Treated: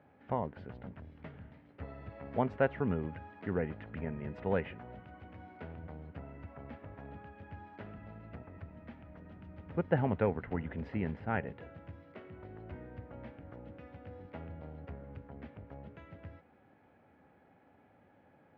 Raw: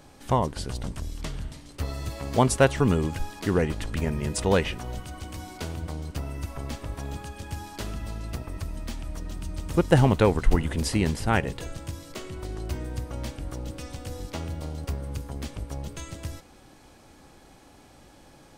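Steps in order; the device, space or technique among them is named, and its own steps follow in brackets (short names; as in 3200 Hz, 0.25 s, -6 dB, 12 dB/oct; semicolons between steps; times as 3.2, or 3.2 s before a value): bass cabinet (speaker cabinet 89–2100 Hz, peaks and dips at 130 Hz -6 dB, 330 Hz -6 dB, 1100 Hz -7 dB); gain -8.5 dB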